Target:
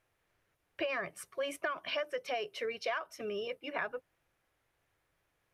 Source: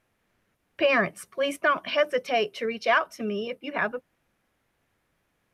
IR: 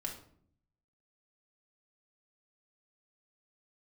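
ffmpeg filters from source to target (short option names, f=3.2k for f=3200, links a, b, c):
-af "equalizer=f=220:t=o:w=0.54:g=-13,acompressor=threshold=-27dB:ratio=12,volume=-4.5dB"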